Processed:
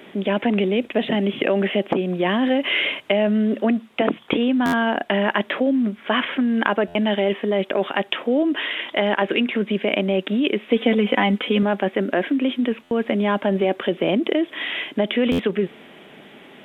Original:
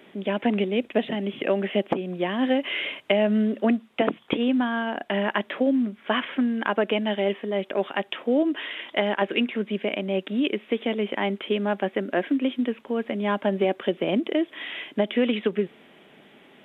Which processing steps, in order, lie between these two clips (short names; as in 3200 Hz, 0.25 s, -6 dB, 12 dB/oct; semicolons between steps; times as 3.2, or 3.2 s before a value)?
in parallel at 0 dB: negative-ratio compressor -27 dBFS, ratio -1; 10.7–11.63 on the sum: comb 4 ms, depth 78%; stuck buffer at 4.65/6.87/12.83/15.31, samples 512, times 6